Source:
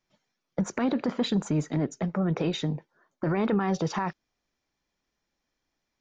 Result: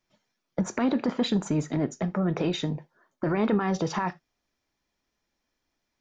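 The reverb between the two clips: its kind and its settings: gated-style reverb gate 100 ms falling, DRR 11.5 dB; trim +1 dB

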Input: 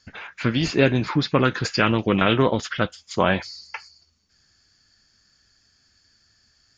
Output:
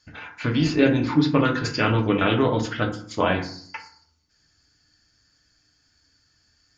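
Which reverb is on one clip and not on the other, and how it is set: FDN reverb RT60 0.55 s, low-frequency decay 1.4×, high-frequency decay 0.45×, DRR 1.5 dB; trim -4 dB

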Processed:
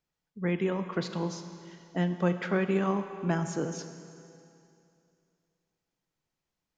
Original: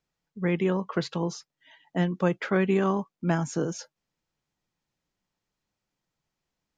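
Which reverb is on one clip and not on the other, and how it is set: Schroeder reverb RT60 2.6 s, combs from 30 ms, DRR 8.5 dB; trim -3.5 dB

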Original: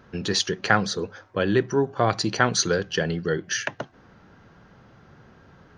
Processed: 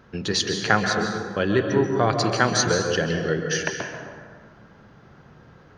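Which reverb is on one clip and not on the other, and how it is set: plate-style reverb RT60 1.7 s, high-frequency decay 0.5×, pre-delay 120 ms, DRR 3.5 dB

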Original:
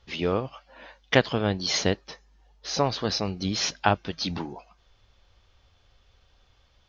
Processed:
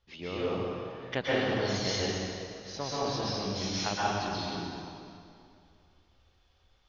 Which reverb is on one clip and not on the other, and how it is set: plate-style reverb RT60 2.4 s, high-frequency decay 0.85×, pre-delay 110 ms, DRR -8 dB; trim -13.5 dB

